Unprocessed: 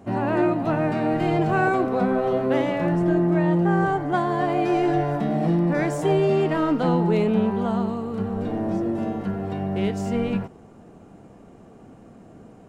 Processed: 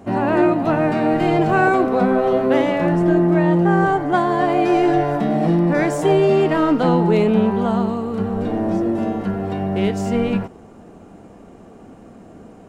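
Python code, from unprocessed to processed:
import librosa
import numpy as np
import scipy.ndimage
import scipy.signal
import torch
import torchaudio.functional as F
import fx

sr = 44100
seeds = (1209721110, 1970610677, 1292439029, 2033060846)

y = fx.peak_eq(x, sr, hz=130.0, db=-7.0, octaves=0.49)
y = F.gain(torch.from_numpy(y), 5.5).numpy()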